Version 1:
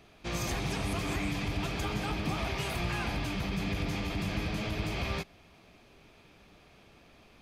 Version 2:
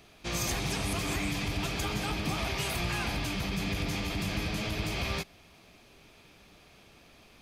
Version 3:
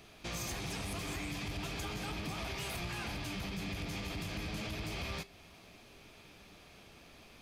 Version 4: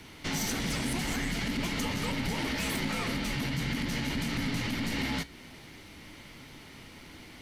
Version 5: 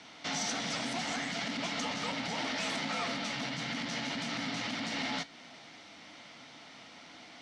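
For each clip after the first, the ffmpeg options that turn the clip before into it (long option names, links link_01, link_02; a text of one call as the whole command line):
ffmpeg -i in.wav -af "highshelf=frequency=3700:gain=8" out.wav
ffmpeg -i in.wav -af "acompressor=threshold=-38dB:ratio=2.5,asoftclip=type=tanh:threshold=-32dB,flanger=delay=9.1:depth=4.3:regen=-76:speed=0.33:shape=triangular,volume=4.5dB" out.wav
ffmpeg -i in.wav -af "afreqshift=-330,volume=8dB" out.wav
ffmpeg -i in.wav -af "highpass=230,equalizer=frequency=380:width_type=q:width=4:gain=-9,equalizer=frequency=700:width_type=q:width=4:gain=9,equalizer=frequency=1300:width_type=q:width=4:gain=4,equalizer=frequency=3600:width_type=q:width=4:gain=4,equalizer=frequency=5500:width_type=q:width=4:gain=4,lowpass=frequency=7400:width=0.5412,lowpass=frequency=7400:width=1.3066,volume=-2.5dB" out.wav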